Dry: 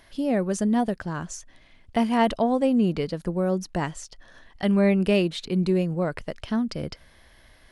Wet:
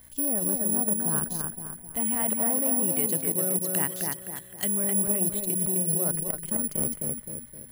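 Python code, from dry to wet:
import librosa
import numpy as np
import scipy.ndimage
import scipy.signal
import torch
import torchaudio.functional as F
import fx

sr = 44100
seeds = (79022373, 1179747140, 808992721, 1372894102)

y = fx.weighting(x, sr, curve='D', at=(1.97, 4.84))
y = fx.env_lowpass_down(y, sr, base_hz=1700.0, full_db=-20.5)
y = fx.low_shelf(y, sr, hz=430.0, db=3.5)
y = fx.level_steps(y, sr, step_db=15)
y = fx.add_hum(y, sr, base_hz=60, snr_db=25)
y = fx.echo_bbd(y, sr, ms=259, stages=4096, feedback_pct=43, wet_db=-3.5)
y = (np.kron(y[::4], np.eye(4)[0]) * 4)[:len(y)]
y = fx.transformer_sat(y, sr, knee_hz=1600.0)
y = y * librosa.db_to_amplitude(-1.5)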